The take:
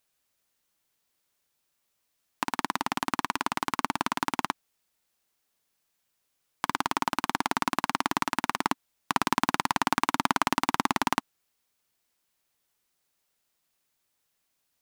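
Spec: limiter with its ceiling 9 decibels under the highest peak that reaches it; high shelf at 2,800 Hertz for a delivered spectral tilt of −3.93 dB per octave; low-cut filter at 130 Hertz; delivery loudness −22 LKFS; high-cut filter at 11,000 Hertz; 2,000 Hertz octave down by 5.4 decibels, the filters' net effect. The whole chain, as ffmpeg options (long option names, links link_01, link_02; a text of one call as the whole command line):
ffmpeg -i in.wav -af "highpass=130,lowpass=11000,equalizer=frequency=2000:width_type=o:gain=-4.5,highshelf=frequency=2800:gain=-7,volume=16dB,alimiter=limit=-1.5dB:level=0:latency=1" out.wav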